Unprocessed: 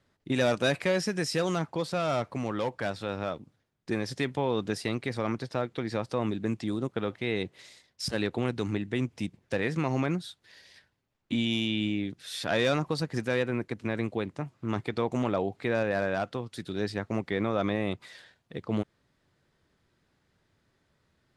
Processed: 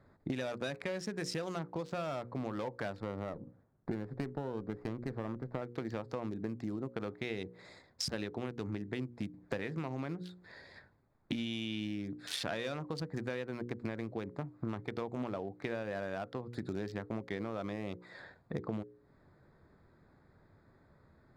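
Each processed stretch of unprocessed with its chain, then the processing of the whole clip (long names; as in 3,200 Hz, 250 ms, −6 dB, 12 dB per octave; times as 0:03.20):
0:03.00–0:05.62: high-frequency loss of the air 360 metres + windowed peak hold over 9 samples
whole clip: adaptive Wiener filter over 15 samples; mains-hum notches 60/120/180/240/300/360/420/480/540 Hz; downward compressor 20 to 1, threshold −43 dBFS; level +9 dB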